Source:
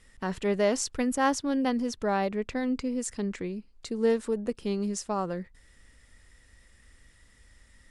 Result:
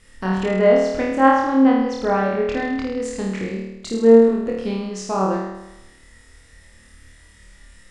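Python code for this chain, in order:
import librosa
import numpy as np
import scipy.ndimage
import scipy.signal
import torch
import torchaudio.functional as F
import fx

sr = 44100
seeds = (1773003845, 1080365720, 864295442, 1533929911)

y = fx.env_lowpass_down(x, sr, base_hz=2100.0, full_db=-23.5)
y = fx.room_flutter(y, sr, wall_m=4.5, rt60_s=0.95)
y = F.gain(torch.from_numpy(y), 5.0).numpy()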